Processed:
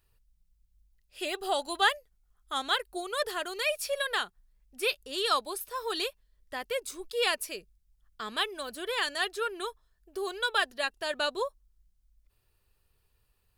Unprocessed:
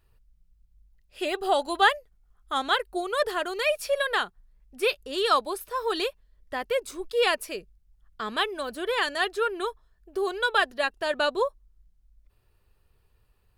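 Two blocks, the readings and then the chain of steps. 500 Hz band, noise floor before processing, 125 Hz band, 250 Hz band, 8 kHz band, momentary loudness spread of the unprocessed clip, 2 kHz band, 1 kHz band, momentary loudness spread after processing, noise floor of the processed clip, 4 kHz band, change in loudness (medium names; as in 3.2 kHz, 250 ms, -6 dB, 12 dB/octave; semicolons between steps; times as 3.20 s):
-6.5 dB, -66 dBFS, no reading, -7.0 dB, +2.0 dB, 10 LU, -4.0 dB, -6.0 dB, 10 LU, -73 dBFS, -1.0 dB, -4.5 dB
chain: treble shelf 2.7 kHz +9.5 dB; trim -7 dB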